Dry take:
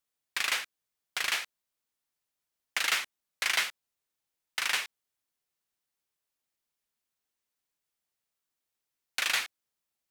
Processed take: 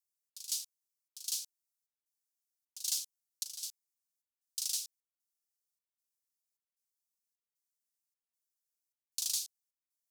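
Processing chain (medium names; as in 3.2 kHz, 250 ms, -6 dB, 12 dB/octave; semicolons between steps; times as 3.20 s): inverse Chebyshev high-pass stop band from 2 kHz, stop band 50 dB; waveshaping leveller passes 1; trance gate "xxx..xxx" 153 bpm -12 dB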